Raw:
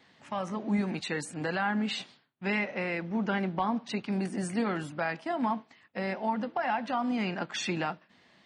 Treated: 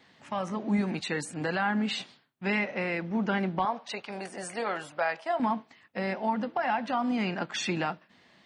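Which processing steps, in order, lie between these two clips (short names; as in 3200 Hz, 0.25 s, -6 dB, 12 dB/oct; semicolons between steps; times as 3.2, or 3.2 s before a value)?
3.65–5.4 resonant low shelf 380 Hz -12 dB, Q 1.5; gain +1.5 dB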